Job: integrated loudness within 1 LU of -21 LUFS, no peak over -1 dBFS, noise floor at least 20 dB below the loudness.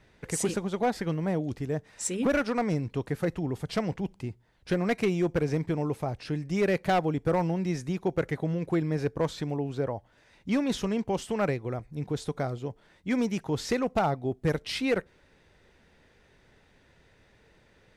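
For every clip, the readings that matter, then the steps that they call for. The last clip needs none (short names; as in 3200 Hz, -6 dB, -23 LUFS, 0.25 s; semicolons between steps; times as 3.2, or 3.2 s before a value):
clipped 0.7%; flat tops at -19.0 dBFS; loudness -30.0 LUFS; peak -19.0 dBFS; loudness target -21.0 LUFS
-> clip repair -19 dBFS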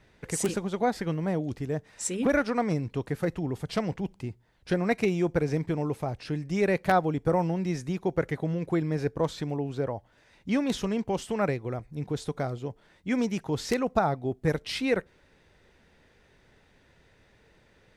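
clipped 0.0%; loudness -29.0 LUFS; peak -10.0 dBFS; loudness target -21.0 LUFS
-> gain +8 dB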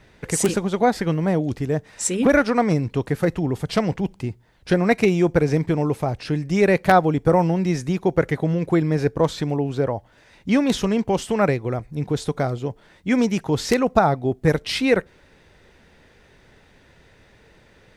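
loudness -21.0 LUFS; peak -2.0 dBFS; noise floor -54 dBFS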